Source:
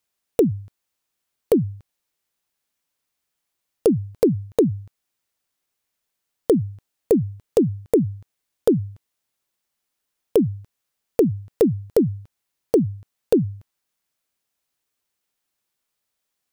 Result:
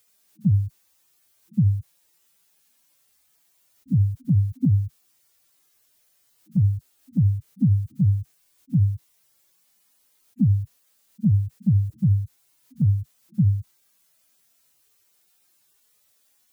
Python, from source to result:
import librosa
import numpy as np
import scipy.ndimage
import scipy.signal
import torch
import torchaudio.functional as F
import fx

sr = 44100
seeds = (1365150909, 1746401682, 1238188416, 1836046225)

p1 = fx.hpss_only(x, sr, part='harmonic')
p2 = fx.high_shelf(p1, sr, hz=4600.0, db=7.5)
p3 = fx.over_compress(p2, sr, threshold_db=-28.0, ratio=-0.5)
p4 = p2 + (p3 * librosa.db_to_amplitude(2.5))
y = p4 * librosa.db_to_amplitude(3.5)